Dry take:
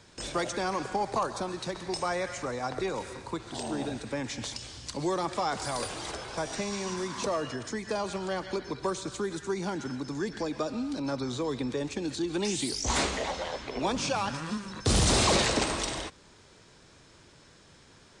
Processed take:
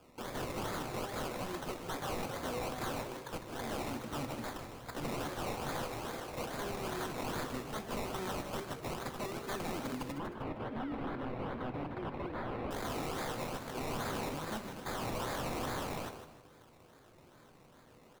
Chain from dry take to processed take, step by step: low shelf 95 Hz -12 dB; de-hum 198.7 Hz, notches 12; decimation with a swept rate 22×, swing 60% 2.4 Hz; wrapped overs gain 29.5 dB; 10.12–12.71 air absorption 470 m; frequency-shifting echo 0.154 s, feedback 32%, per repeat +69 Hz, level -10 dB; reverb RT60 0.65 s, pre-delay 4 ms, DRR 9.5 dB; gain -4 dB

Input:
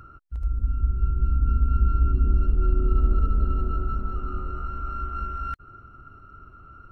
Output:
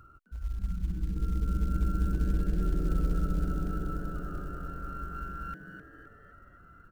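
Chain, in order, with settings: 0.76–1.17 Chebyshev low-pass 590 Hz, order 2; short-mantissa float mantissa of 4-bit; frequency-shifting echo 0.258 s, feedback 44%, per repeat +130 Hz, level -10 dB; gain -8.5 dB

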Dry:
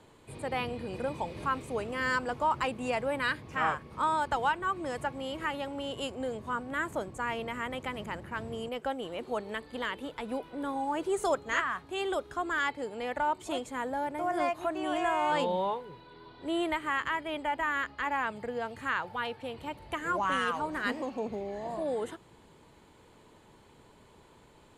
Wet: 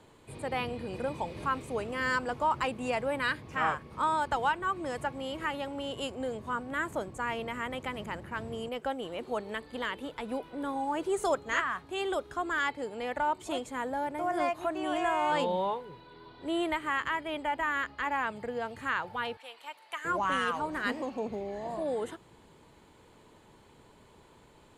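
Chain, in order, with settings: 19.37–20.05 HPF 1000 Hz 12 dB/oct

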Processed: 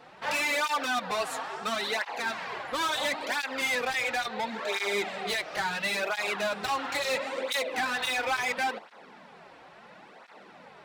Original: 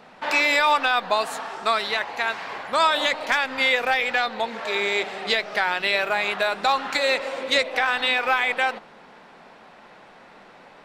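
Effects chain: hard clip -23 dBFS, distortion -6 dB; tape flanging out of phase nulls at 0.73 Hz, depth 5.1 ms

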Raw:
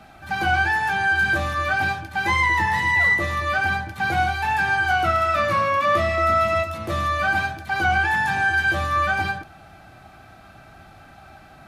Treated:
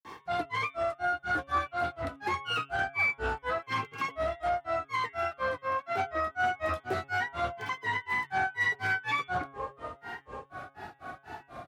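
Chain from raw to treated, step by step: tape echo 0.526 s, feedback 71%, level -19 dB, low-pass 4100 Hz; reverse; compressor 5:1, threshold -27 dBFS, peak gain reduction 10.5 dB; reverse; HPF 81 Hz; bell 540 Hz +6 dB 2.8 oct; grains 0.226 s, grains 4.1/s, spray 31 ms, pitch spread up and down by 7 st; limiter -21.5 dBFS, peak gain reduction 6.5 dB; comb 2.6 ms, depth 35%; de-hum 137.5 Hz, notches 27; Doppler distortion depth 0.14 ms

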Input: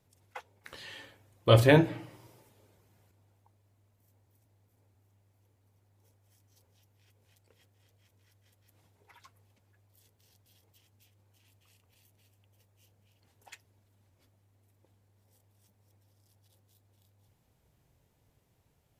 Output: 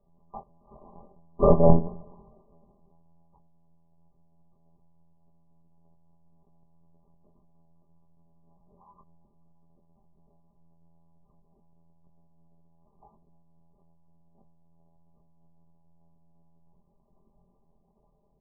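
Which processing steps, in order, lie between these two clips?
granular stretch 0.57×, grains 81 ms; monotone LPC vocoder at 8 kHz 140 Hz; brick-wall FIR low-pass 1200 Hz; doubler 13 ms -5 dB; granular stretch 1.7×, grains 24 ms; gain +6.5 dB

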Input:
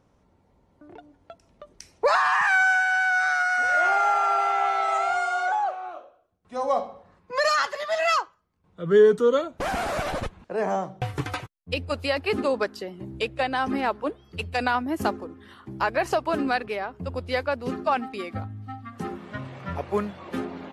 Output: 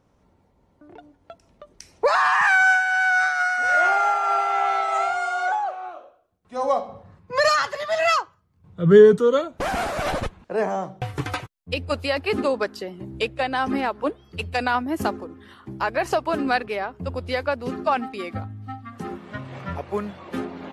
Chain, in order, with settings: 6.88–9.18 bell 110 Hz +15 dB 1.4 oct; noise-modulated level, depth 55%; gain +5 dB

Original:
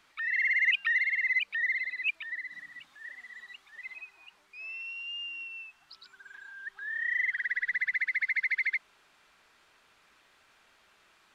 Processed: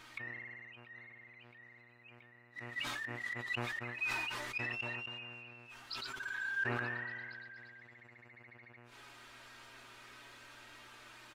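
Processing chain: notch 630 Hz, Q 19; comb 3.2 ms, depth 44%; in parallel at +1 dB: compressor, threshold -36 dBFS, peak gain reduction 13 dB; on the sum: flange 0.26 Hz, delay 6.4 ms, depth 1.1 ms, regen +51%; flipped gate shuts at -34 dBFS, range -34 dB; flange 0.55 Hz, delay 2.3 ms, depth 3 ms, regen -69%; buzz 120 Hz, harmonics 24, -77 dBFS -4 dB/oct; on a send: delay with a stepping band-pass 0.233 s, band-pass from 310 Hz, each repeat 0.7 oct, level -10 dB; on the sum: sustainer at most 21 dB/s; gain +9 dB

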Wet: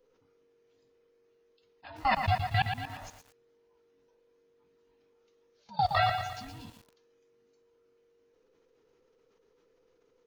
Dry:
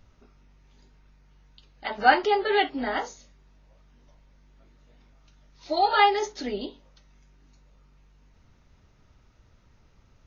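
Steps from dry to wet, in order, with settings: band inversion scrambler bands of 500 Hz; level quantiser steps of 22 dB; lo-fi delay 0.117 s, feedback 55%, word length 8-bit, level -6.5 dB; gain -2.5 dB

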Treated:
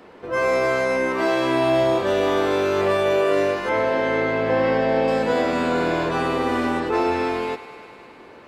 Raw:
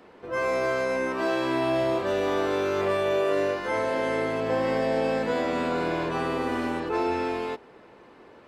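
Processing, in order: 3.69–5.08 LPF 4000 Hz 12 dB/oct; thinning echo 0.102 s, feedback 83%, high-pass 300 Hz, level -14.5 dB; gain +5.5 dB

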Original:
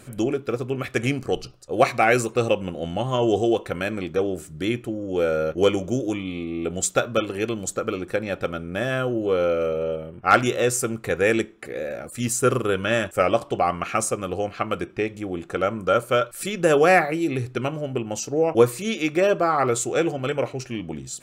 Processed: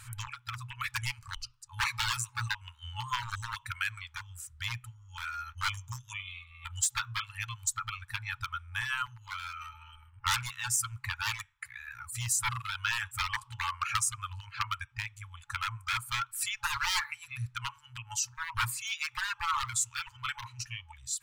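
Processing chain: wavefolder -16.5 dBFS; reverb removal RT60 1.9 s; compressor, threshold -24 dBFS, peak gain reduction 5 dB; FFT band-reject 120–850 Hz

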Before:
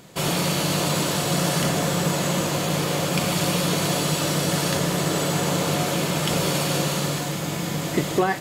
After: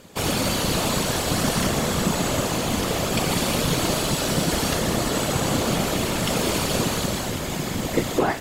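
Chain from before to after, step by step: whisperiser

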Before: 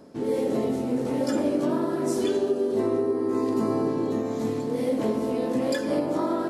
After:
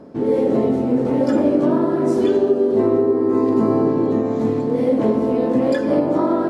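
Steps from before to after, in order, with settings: LPF 1300 Hz 6 dB/oct; gain +8.5 dB

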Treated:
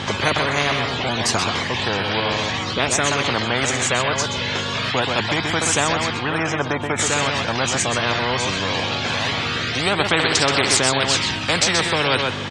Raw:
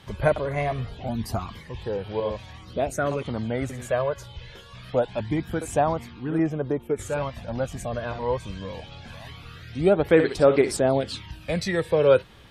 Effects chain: hum 50 Hz, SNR 15 dB; elliptic band-pass 100–7200 Hz, stop band 40 dB; on a send: echo 0.128 s -11 dB; on the sum: spectral compressor 4:1; gain +3 dB

